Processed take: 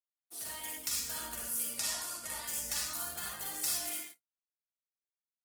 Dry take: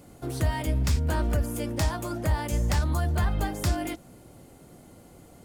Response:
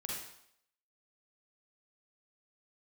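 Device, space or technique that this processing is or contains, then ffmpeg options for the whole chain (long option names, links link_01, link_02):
speakerphone in a meeting room: -filter_complex "[0:a]asettb=1/sr,asplit=3[link_01][link_02][link_03];[link_01]atrim=end=1.674[link_04];[link_02]atrim=start=1.67:end=2.43,asetpts=PTS-STARTPTS,afade=type=in:duration=0.004:curve=qsin,afade=type=out:start_time=0.756:duration=0.004:curve=qsin,lowpass=frequency=12000:width=0.5412,lowpass=frequency=12000:width=1.3066[link_05];[link_03]atrim=start=2.426[link_06];[link_04][link_05]acrossfade=duration=0.004:curve1=hsin:curve2=qsin[link_07];[link_07][link_06]acrossfade=duration=0.004:curve1=qsin:curve2=hsin,aderivative,aecho=1:1:4.2:0.31,asplit=2[link_08][link_09];[link_09]adelay=65,lowpass=frequency=2200:poles=1,volume=-14dB,asplit=2[link_10][link_11];[link_11]adelay=65,lowpass=frequency=2200:poles=1,volume=0.34,asplit=2[link_12][link_13];[link_13]adelay=65,lowpass=frequency=2200:poles=1,volume=0.34[link_14];[link_08][link_10][link_12][link_14]amix=inputs=4:normalize=0[link_15];[1:a]atrim=start_sample=2205[link_16];[link_15][link_16]afir=irnorm=-1:irlink=0,dynaudnorm=framelen=110:gausssize=9:maxgain=4dB,agate=range=-53dB:threshold=-47dB:ratio=16:detection=peak" -ar 48000 -c:a libopus -b:a 16k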